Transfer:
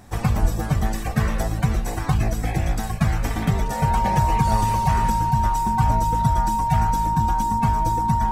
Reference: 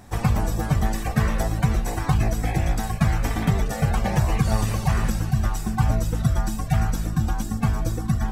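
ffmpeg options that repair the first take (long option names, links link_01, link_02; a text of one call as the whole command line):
ffmpeg -i in.wav -filter_complex "[0:a]bandreject=frequency=930:width=30,asplit=3[link_01][link_02][link_03];[link_01]afade=type=out:start_time=0.41:duration=0.02[link_04];[link_02]highpass=frequency=140:width=0.5412,highpass=frequency=140:width=1.3066,afade=type=in:start_time=0.41:duration=0.02,afade=type=out:start_time=0.53:duration=0.02[link_05];[link_03]afade=type=in:start_time=0.53:duration=0.02[link_06];[link_04][link_05][link_06]amix=inputs=3:normalize=0" out.wav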